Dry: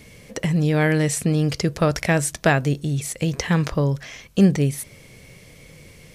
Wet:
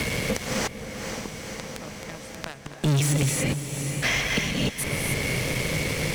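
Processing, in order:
gate with flip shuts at −15 dBFS, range −39 dB
low-shelf EQ 460 Hz −3.5 dB
reverb whose tail is shaped and stops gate 320 ms rising, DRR 3 dB
in parallel at −9.5 dB: fuzz pedal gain 42 dB, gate −50 dBFS
on the sum: high-shelf EQ 5,000 Hz −6.5 dB
on a send: feedback delay with all-pass diffusion 506 ms, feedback 49%, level −13 dB
on the sum: multiband upward and downward compressor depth 70%
level +2 dB

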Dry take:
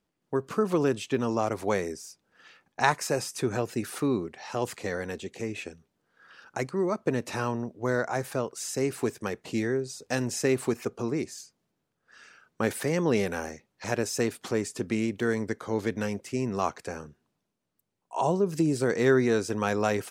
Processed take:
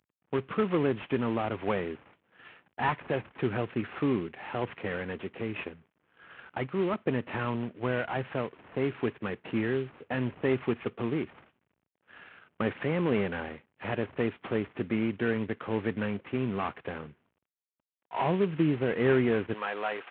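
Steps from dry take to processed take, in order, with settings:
variable-slope delta modulation 16 kbit/s
high-pass filter 78 Hz 12 dB per octave, from 0:19.54 570 Hz
dynamic equaliser 570 Hz, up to −4 dB, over −37 dBFS, Q 0.73
level +1.5 dB

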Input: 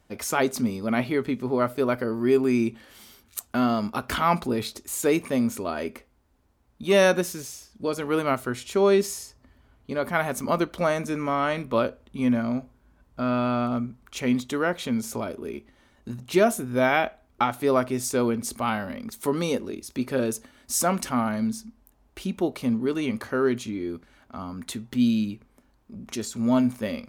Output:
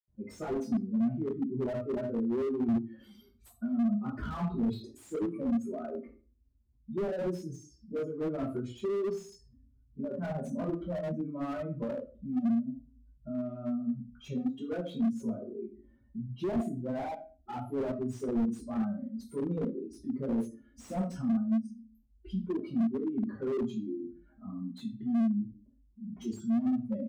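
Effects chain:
expanding power law on the bin magnitudes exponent 2.5
dynamic equaliser 1,900 Hz, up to −6 dB, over −47 dBFS, Q 2
in parallel at −5 dB: hard clipping −20 dBFS, distortion −14 dB
on the sum: far-end echo of a speakerphone 80 ms, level −23 dB
convolution reverb RT60 0.35 s, pre-delay 76 ms
slew-rate limiting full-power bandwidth 8.6 Hz
level +4 dB

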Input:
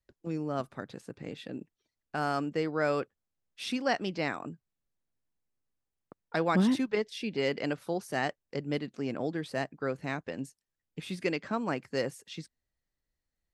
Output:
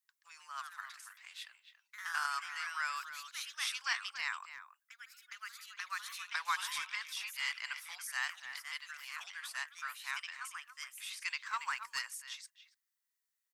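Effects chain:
Chebyshev high-pass filter 1,000 Hz, order 5
high-shelf EQ 6,600 Hz +12 dB
notch filter 4,200 Hz, Q 23
delay with pitch and tempo change per echo 139 ms, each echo +2 semitones, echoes 3, each echo −6 dB
far-end echo of a speakerphone 280 ms, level −11 dB
0:01.41–0:02.41: transient designer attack +6 dB, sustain −3 dB
0:11.46–0:11.99: leveller curve on the samples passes 1
level −2 dB

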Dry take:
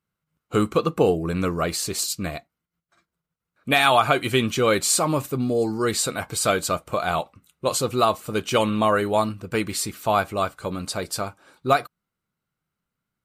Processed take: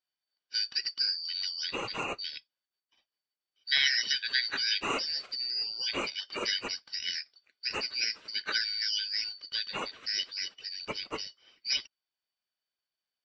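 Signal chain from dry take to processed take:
band-splitting scrambler in four parts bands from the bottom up 4321
Gaussian smoothing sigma 2.4 samples
low-shelf EQ 200 Hz −11.5 dB

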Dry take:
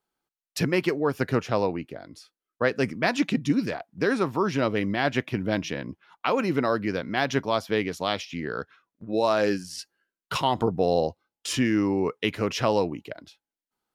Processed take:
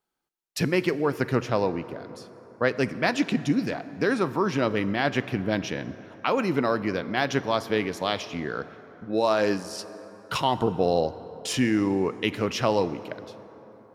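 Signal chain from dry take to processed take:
dense smooth reverb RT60 4.2 s, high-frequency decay 0.45×, DRR 14 dB

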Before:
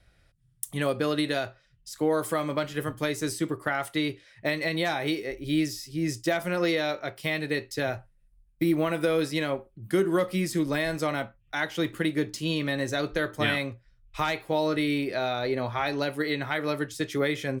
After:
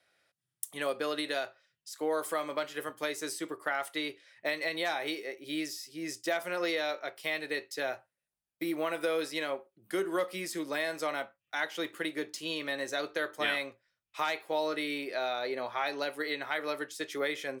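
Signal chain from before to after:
high-pass filter 430 Hz 12 dB per octave
level −3.5 dB

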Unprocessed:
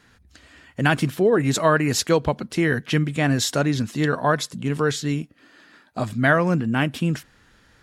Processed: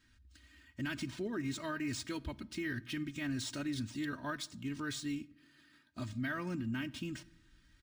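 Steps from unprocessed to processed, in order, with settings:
guitar amp tone stack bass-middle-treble 6-0-2
comb filter 3.2 ms, depth 81%
brickwall limiter −33.5 dBFS, peak gain reduction 10.5 dB
rectangular room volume 2,800 cubic metres, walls furnished, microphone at 0.4 metres
linearly interpolated sample-rate reduction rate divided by 3×
level +4 dB

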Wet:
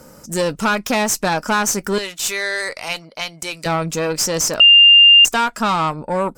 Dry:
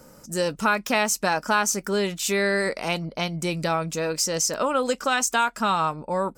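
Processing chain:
0:01.98–0:03.66: high-pass filter 1,400 Hz 6 dB per octave
tube saturation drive 19 dB, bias 0.45
0:04.60–0:05.25: beep over 2,800 Hz −12.5 dBFS
level +8 dB

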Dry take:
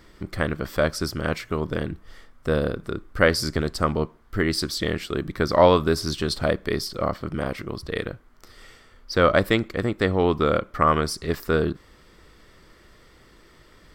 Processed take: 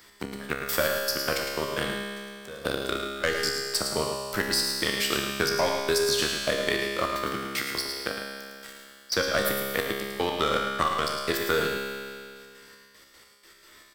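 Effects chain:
spectral tilt +3.5 dB per octave
leveller curve on the samples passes 3
downward compressor, threshold −13 dBFS, peak gain reduction 8 dB
gate pattern "x.x..x.xx.." 153 BPM −24 dB
tuned comb filter 68 Hz, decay 1.6 s, harmonics all, mix 90%
single-tap delay 108 ms −8 dB
multiband upward and downward compressor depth 40%
level +7.5 dB

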